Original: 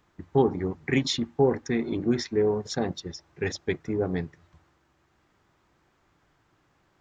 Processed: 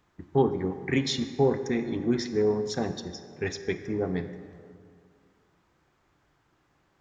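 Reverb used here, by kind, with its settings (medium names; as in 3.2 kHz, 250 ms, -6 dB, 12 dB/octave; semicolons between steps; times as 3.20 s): plate-style reverb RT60 2.2 s, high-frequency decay 0.55×, DRR 9 dB; trim -2 dB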